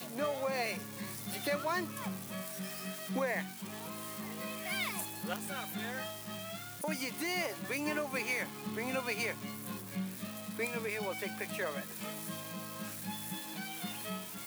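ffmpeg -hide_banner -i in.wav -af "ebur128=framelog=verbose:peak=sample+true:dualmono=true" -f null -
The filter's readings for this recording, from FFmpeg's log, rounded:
Integrated loudness:
  I:         -34.6 LUFS
  Threshold: -44.6 LUFS
Loudness range:
  LRA:         2.9 LU
  Threshold: -54.5 LUFS
  LRA low:   -35.8 LUFS
  LRA high:  -32.9 LUFS
Sample peak:
  Peak:      -21.9 dBFS
True peak:
  Peak:      -21.5 dBFS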